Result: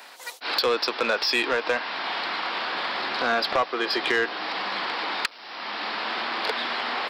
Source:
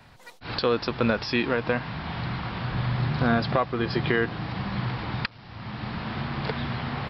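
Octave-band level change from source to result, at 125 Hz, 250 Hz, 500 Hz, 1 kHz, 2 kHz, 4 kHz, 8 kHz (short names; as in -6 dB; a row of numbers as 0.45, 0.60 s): -26.5 dB, -8.0 dB, +0.5 dB, +4.0 dB, +5.0 dB, +8.5 dB, n/a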